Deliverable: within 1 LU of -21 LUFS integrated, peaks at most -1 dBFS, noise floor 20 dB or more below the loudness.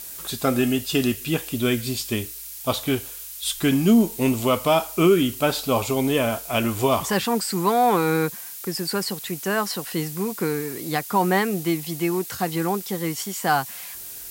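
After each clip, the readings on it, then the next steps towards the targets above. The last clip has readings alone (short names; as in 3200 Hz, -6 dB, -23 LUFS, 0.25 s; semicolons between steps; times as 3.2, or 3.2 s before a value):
noise floor -37 dBFS; noise floor target -43 dBFS; loudness -23.0 LUFS; peak -7.5 dBFS; loudness target -21.0 LUFS
-> denoiser 6 dB, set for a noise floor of -37 dBFS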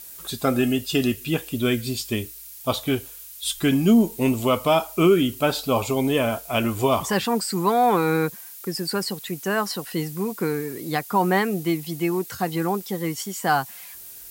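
noise floor -41 dBFS; noise floor target -43 dBFS
-> denoiser 6 dB, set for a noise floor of -41 dBFS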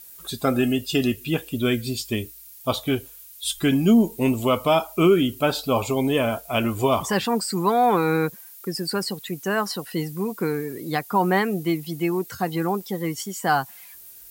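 noise floor -45 dBFS; loudness -23.5 LUFS; peak -8.0 dBFS; loudness target -21.0 LUFS
-> gain +2.5 dB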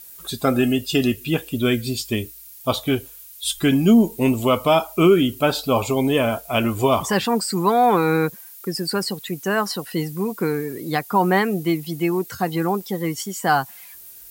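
loudness -21.0 LUFS; peak -5.5 dBFS; noise floor -42 dBFS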